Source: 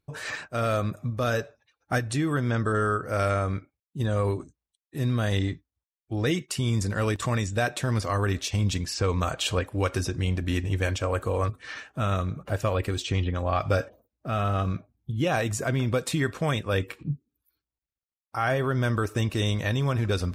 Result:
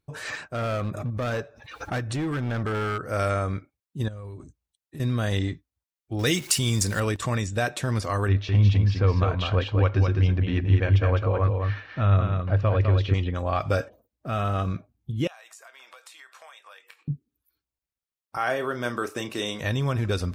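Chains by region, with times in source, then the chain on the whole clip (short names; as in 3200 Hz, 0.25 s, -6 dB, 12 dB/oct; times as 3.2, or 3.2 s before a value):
0.52–3.01 LPF 3300 Hz 6 dB/oct + hard clip -24 dBFS + backwards sustainer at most 69 dB/s
4.08–5 bell 78 Hz +7.5 dB 1.9 oct + compressor 12:1, threshold -35 dBFS
6.19–7 zero-crossing step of -41.5 dBFS + high shelf 2700 Hz +11.5 dB
8.28–13.14 Bessel low-pass 2900 Hz, order 6 + bell 100 Hz +10.5 dB 0.23 oct + echo 0.206 s -4.5 dB
15.27–17.08 HPF 760 Hz 24 dB/oct + compressor 8:1, threshold -45 dBFS + doubler 23 ms -12 dB
18.37–19.61 HPF 280 Hz + doubler 33 ms -10 dB
whole clip: dry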